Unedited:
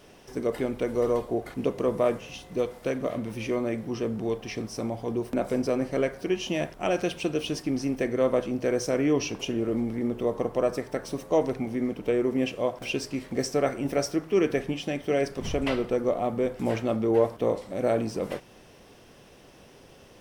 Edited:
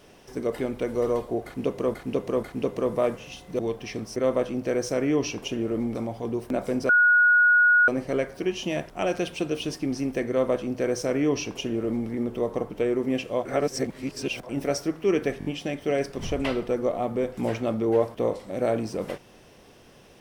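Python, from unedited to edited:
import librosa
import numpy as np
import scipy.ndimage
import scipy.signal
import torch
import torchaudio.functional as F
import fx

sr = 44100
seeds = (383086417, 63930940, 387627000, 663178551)

y = fx.edit(x, sr, fx.repeat(start_s=1.45, length_s=0.49, count=3),
    fx.cut(start_s=2.61, length_s=1.6),
    fx.insert_tone(at_s=5.72, length_s=0.99, hz=1450.0, db=-14.5),
    fx.duplicate(start_s=8.13, length_s=1.79, to_s=4.78),
    fx.cut(start_s=10.54, length_s=1.44),
    fx.reverse_span(start_s=12.73, length_s=1.04),
    fx.stutter(start_s=14.67, slice_s=0.02, count=4), tone=tone)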